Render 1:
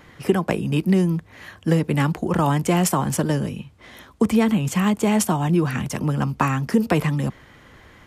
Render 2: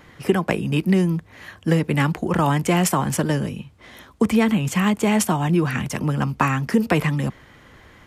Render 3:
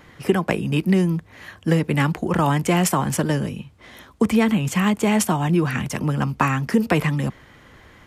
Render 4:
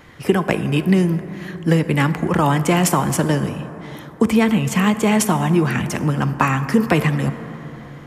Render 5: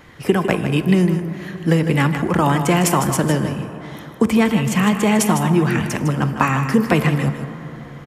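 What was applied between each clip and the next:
dynamic bell 2.1 kHz, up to +4 dB, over -39 dBFS, Q 1.1
no audible change
plate-style reverb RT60 3.9 s, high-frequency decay 0.3×, DRR 10.5 dB; trim +2.5 dB
delay 155 ms -9 dB

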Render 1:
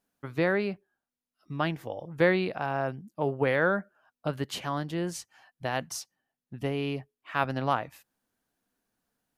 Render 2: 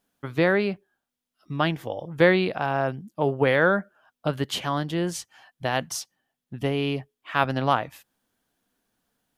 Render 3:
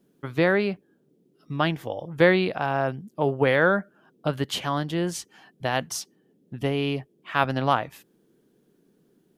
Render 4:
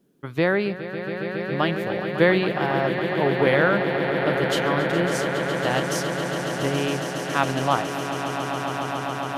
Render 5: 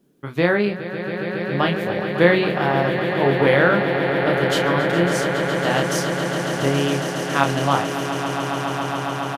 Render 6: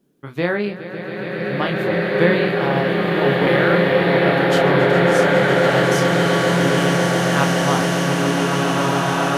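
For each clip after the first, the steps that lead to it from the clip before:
peaking EQ 3.3 kHz +5 dB 0.28 oct; trim +5 dB
band noise 140–430 Hz -64 dBFS
echo with a slow build-up 138 ms, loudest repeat 8, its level -11 dB
doubling 29 ms -5 dB; trim +2 dB
swelling reverb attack 1870 ms, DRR -4.5 dB; trim -2.5 dB

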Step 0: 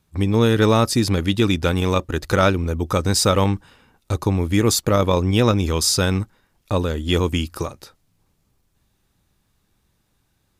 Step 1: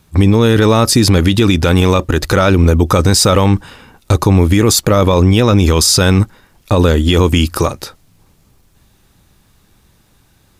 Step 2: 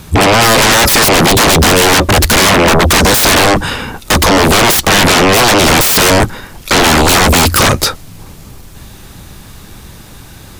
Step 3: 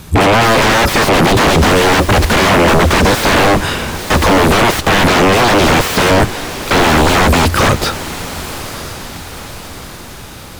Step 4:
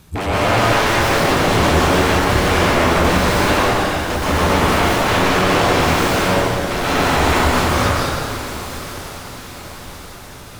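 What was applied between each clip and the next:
loudness maximiser +15.5 dB; trim -1 dB
sine folder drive 18 dB, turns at -1.5 dBFS; trim -3 dB
echo that smears into a reverb 1042 ms, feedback 52%, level -15.5 dB; slew-rate limiter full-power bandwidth 830 Hz; trim -1 dB
plate-style reverb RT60 2.5 s, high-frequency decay 0.75×, pre-delay 115 ms, DRR -8 dB; trim -13.5 dB

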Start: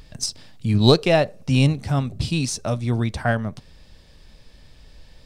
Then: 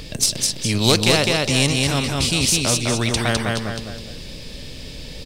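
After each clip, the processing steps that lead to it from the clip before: high-order bell 1.1 kHz -8.5 dB; on a send: feedback delay 206 ms, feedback 26%, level -4.5 dB; on the sum: spectrum-flattening compressor 2:1; trim +1 dB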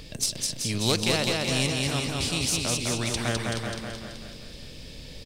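feedback delay 380 ms, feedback 25%, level -7 dB; trim -8.5 dB

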